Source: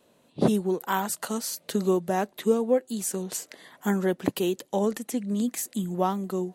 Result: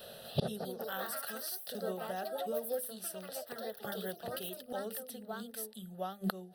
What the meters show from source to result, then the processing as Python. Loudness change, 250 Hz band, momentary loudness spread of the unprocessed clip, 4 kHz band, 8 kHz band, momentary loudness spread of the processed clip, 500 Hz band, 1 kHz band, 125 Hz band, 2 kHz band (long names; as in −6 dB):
−12.0 dB, −17.0 dB, 7 LU, −5.5 dB, −11.5 dB, 6 LU, −12.0 dB, −11.5 dB, −11.0 dB, −7.5 dB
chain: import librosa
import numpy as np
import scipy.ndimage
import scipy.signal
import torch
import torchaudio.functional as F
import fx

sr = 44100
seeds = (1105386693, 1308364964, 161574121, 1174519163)

y = fx.high_shelf(x, sr, hz=3400.0, db=8.0)
y = fx.hum_notches(y, sr, base_hz=50, count=10)
y = fx.echo_pitch(y, sr, ms=248, semitones=3, count=3, db_per_echo=-3.0)
y = fx.fixed_phaser(y, sr, hz=1500.0, stages=8)
y = fx.gate_flip(y, sr, shuts_db=-32.0, range_db=-26)
y = y * librosa.db_to_amplitude(14.5)